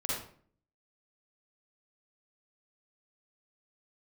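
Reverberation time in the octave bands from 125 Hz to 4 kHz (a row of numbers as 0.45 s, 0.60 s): 0.65 s, 0.65 s, 0.55 s, 0.45 s, 0.45 s, 0.35 s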